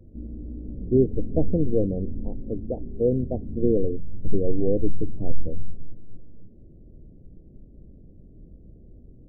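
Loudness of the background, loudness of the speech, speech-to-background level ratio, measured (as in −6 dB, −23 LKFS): −37.0 LKFS, −26.5 LKFS, 10.5 dB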